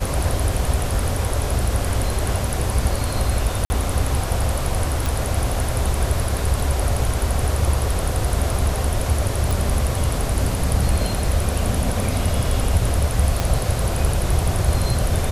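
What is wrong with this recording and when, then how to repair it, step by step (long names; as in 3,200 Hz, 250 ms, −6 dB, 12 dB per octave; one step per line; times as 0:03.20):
0:03.65–0:03.70: drop-out 50 ms
0:05.06: click
0:09.51: click
0:13.40: click −6 dBFS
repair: click removal
repair the gap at 0:03.65, 50 ms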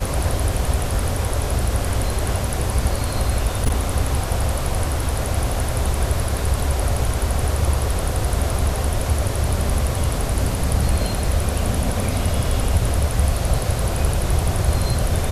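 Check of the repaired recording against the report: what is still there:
0:13.40: click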